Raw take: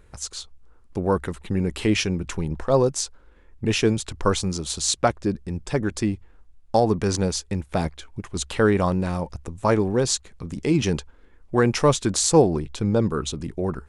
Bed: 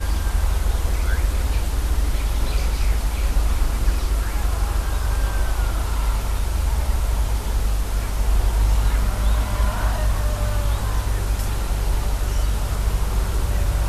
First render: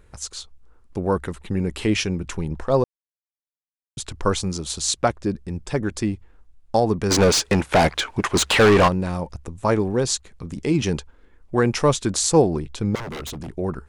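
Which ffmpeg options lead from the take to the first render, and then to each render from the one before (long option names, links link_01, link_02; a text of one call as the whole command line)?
ffmpeg -i in.wav -filter_complex "[0:a]asplit=3[link_01][link_02][link_03];[link_01]afade=type=out:start_time=7.1:duration=0.02[link_04];[link_02]asplit=2[link_05][link_06];[link_06]highpass=frequency=720:poles=1,volume=29dB,asoftclip=type=tanh:threshold=-7dB[link_07];[link_05][link_07]amix=inputs=2:normalize=0,lowpass=frequency=3600:poles=1,volume=-6dB,afade=type=in:start_time=7.1:duration=0.02,afade=type=out:start_time=8.87:duration=0.02[link_08];[link_03]afade=type=in:start_time=8.87:duration=0.02[link_09];[link_04][link_08][link_09]amix=inputs=3:normalize=0,asettb=1/sr,asplit=3[link_10][link_11][link_12];[link_10]atrim=end=12.954[link_13];[link_11]atrim=start=12.95:end=13.54,asetpts=PTS-STARTPTS,afade=type=in:duration=0.004:curve=qsin,afade=type=out:start_time=0.586:duration=0.004:curve=qsin,aeval=exprs='0.0447*(abs(mod(val(0)/0.0447+3,4)-2)-1)':channel_layout=same[link_14];[link_12]atrim=start=13.536[link_15];[link_13][link_14]acrossfade=duration=0.004:curve1=hsin:curve2=qsin[link_16];[link_16][link_15]acrossfade=duration=0.004:curve1=qsin:curve2=hsin,asplit=3[link_17][link_18][link_19];[link_17]atrim=end=2.84,asetpts=PTS-STARTPTS,afade=type=out:start_time=2.836:duration=0.004:curve=hsin[link_20];[link_18]atrim=start=2.84:end=3.97,asetpts=PTS-STARTPTS,volume=0[link_21];[link_19]atrim=start=3.97,asetpts=PTS-STARTPTS,afade=type=in:duration=0.004:curve=hsin[link_22];[link_20][link_21][link_22]concat=n=3:v=0:a=1" out.wav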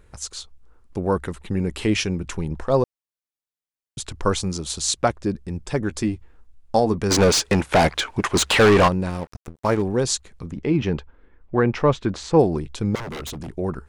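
ffmpeg -i in.wav -filter_complex "[0:a]asettb=1/sr,asplit=3[link_01][link_02][link_03];[link_01]atrim=end=5.894[link_04];[link_02]atrim=start=5.89:end=6.98,asetpts=PTS-STARTPTS,afade=type=in:duration=0.004:curve=qsin,afade=type=out:start_time=1.086:duration=0.004:curve=qsin,asplit=2[link_05][link_06];[link_06]adelay=13,volume=-10dB[link_07];[link_05][link_07]amix=inputs=2:normalize=0,atrim=end_sample=48069[link_08];[link_03]atrim=start=6.976[link_09];[link_04][link_08]acrossfade=duration=0.004:curve1=hsin:curve2=qsin[link_10];[link_10][link_09]acrossfade=duration=0.004:curve1=qsin:curve2=hsin,asettb=1/sr,asplit=3[link_11][link_12][link_13];[link_11]atrim=end=9.104[link_14];[link_12]atrim=start=9.1:end=9.82,asetpts=PTS-STARTPTS,afade=type=in:duration=0.004:curve=qsin,afade=type=out:start_time=0.716:duration=0.004:curve=qsin,aeval=exprs='sgn(val(0))*max(abs(val(0))-0.0168,0)':channel_layout=same[link_15];[link_13]atrim=start=9.816[link_16];[link_14][link_15]acrossfade=duration=0.004:curve1=hsin:curve2=qsin[link_17];[link_17][link_16]acrossfade=duration=0.004:curve1=qsin:curve2=hsin,asplit=3[link_18][link_19][link_20];[link_18]afade=type=out:start_time=10.5:duration=0.02[link_21];[link_19]lowpass=2600,afade=type=in:start_time=10.5:duration=0.02,afade=type=out:start_time=12.38:duration=0.02[link_22];[link_20]afade=type=in:start_time=12.38:duration=0.02[link_23];[link_21][link_22][link_23]amix=inputs=3:normalize=0" out.wav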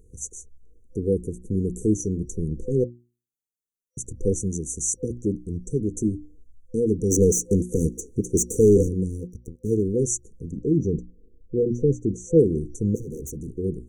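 ffmpeg -i in.wav -af "bandreject=frequency=60:width_type=h:width=6,bandreject=frequency=120:width_type=h:width=6,bandreject=frequency=180:width_type=h:width=6,bandreject=frequency=240:width_type=h:width=6,bandreject=frequency=300:width_type=h:width=6,bandreject=frequency=360:width_type=h:width=6,afftfilt=real='re*(1-between(b*sr/4096,510,5800))':imag='im*(1-between(b*sr/4096,510,5800))':win_size=4096:overlap=0.75" out.wav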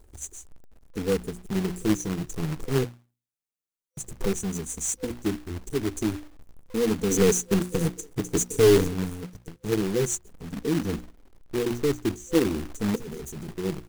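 ffmpeg -i in.wav -af "flanger=delay=2.9:depth=4.1:regen=-11:speed=0.17:shape=sinusoidal,acrusher=bits=2:mode=log:mix=0:aa=0.000001" out.wav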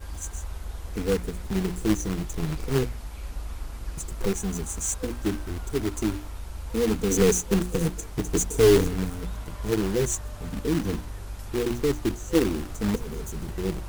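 ffmpeg -i in.wav -i bed.wav -filter_complex "[1:a]volume=-15dB[link_01];[0:a][link_01]amix=inputs=2:normalize=0" out.wav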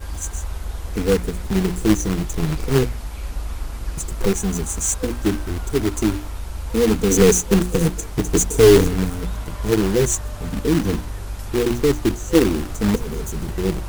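ffmpeg -i in.wav -af "volume=7dB,alimiter=limit=-3dB:level=0:latency=1" out.wav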